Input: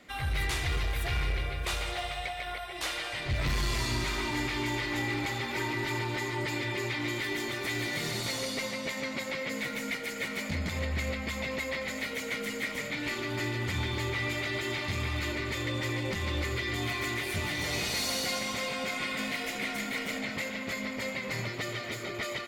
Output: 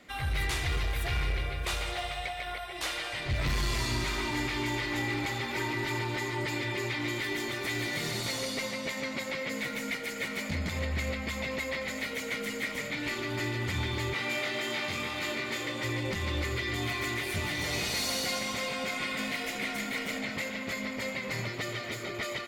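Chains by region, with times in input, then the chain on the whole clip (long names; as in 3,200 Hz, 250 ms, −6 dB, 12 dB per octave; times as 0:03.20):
0:14.13–0:15.83: high-pass filter 180 Hz + flutter between parallel walls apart 3.7 metres, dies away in 0.23 s
whole clip: no processing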